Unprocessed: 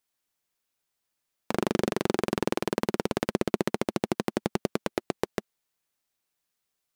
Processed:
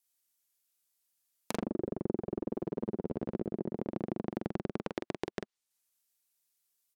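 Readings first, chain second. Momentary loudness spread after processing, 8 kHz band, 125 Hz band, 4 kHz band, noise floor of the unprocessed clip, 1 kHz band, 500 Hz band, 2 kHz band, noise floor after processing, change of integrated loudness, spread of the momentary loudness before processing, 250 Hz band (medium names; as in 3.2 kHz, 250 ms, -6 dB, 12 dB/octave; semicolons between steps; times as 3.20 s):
3 LU, -12.5 dB, -6.0 dB, -14.0 dB, -82 dBFS, -12.0 dB, -8.0 dB, -13.0 dB, under -85 dBFS, -7.5 dB, 5 LU, -6.0 dB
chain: waveshaping leveller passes 1; pre-emphasis filter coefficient 0.8; low-pass that closes with the level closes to 490 Hz, closed at -36 dBFS; in parallel at 0 dB: level held to a coarse grid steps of 11 dB; on the sum: doubling 45 ms -5 dB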